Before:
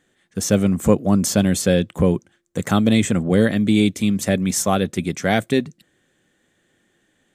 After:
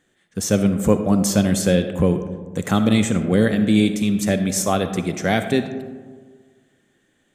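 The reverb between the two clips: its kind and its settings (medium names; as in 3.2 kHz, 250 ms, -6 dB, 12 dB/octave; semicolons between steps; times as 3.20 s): algorithmic reverb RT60 1.6 s, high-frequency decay 0.35×, pre-delay 20 ms, DRR 8.5 dB; trim -1 dB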